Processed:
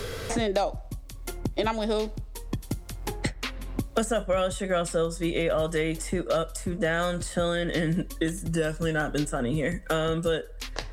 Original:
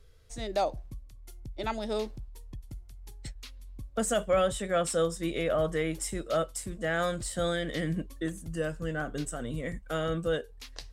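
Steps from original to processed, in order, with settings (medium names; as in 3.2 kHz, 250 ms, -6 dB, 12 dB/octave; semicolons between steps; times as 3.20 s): on a send at -20 dB: reverberation RT60 0.60 s, pre-delay 4 ms; on the sum: three bands compressed up and down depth 100%; trim +3.5 dB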